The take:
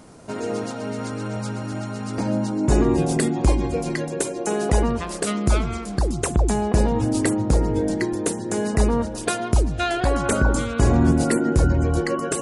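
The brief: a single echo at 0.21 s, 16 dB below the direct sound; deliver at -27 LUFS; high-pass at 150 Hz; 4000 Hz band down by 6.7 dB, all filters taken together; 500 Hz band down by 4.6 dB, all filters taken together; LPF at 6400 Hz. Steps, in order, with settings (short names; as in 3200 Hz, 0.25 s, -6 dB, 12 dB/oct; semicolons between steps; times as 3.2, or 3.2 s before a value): HPF 150 Hz; LPF 6400 Hz; bell 500 Hz -6 dB; bell 4000 Hz -8 dB; echo 0.21 s -16 dB; gain -0.5 dB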